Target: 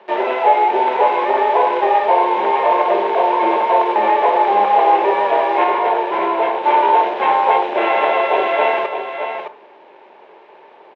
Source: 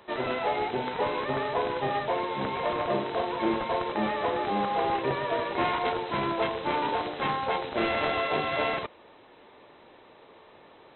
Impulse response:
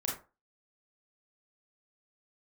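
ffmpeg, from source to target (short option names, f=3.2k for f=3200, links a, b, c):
-filter_complex "[0:a]acrossover=split=410|900[a][b][c];[a]acompressor=threshold=-43dB:ratio=6[d];[d][b][c]amix=inputs=3:normalize=0,acrusher=bits=7:dc=4:mix=0:aa=0.000001,asplit=2[e][f];[f]tiltshelf=f=970:g=3.5[g];[1:a]atrim=start_sample=2205[h];[g][h]afir=irnorm=-1:irlink=0,volume=-12.5dB[i];[e][i]amix=inputs=2:normalize=0,crystalizer=i=8.5:c=0,asettb=1/sr,asplit=3[j][k][l];[j]atrim=end=5.644[m];[k]atrim=start=5.64:end=6.64,asetpts=PTS-STARTPTS,afade=t=in:d=0.004:c=qsin,afade=t=out:st=0.996:d=0.004:c=qsin,asoftclip=type=hard:threshold=-18dB[n];[l]atrim=start=6.636[o];[m][n]acrossfade=d=0.004:c1=hsin:c2=qsin[p];[p][o]acrossfade=d=0.004:c1=qsin:c2=hsin,highpass=f=220:w=0.5412,highpass=f=220:w=1.3066,equalizer=f=270:t=q:w=4:g=-7,equalizer=f=390:t=q:w=4:g=9,equalizer=f=590:t=q:w=4:g=5,equalizer=f=880:t=q:w=4:g=9,equalizer=f=1.3k:t=q:w=4:g=-8,equalizer=f=1.9k:t=q:w=4:g=-5,lowpass=f=2.2k:w=0.5412,lowpass=f=2.2k:w=1.3066,aecho=1:1:615:0.422,volume=4.5dB"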